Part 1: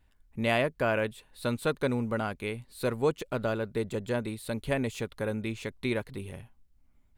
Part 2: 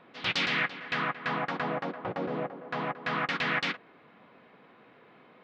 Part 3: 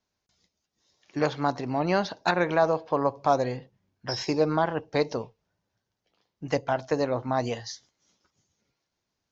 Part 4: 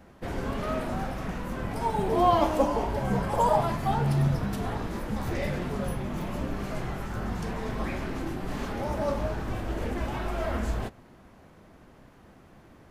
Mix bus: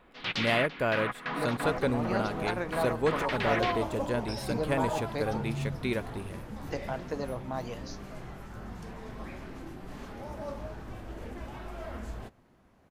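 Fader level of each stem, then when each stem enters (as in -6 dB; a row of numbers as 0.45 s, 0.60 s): -1.0 dB, -3.5 dB, -9.5 dB, -10.0 dB; 0.00 s, 0.00 s, 0.20 s, 1.40 s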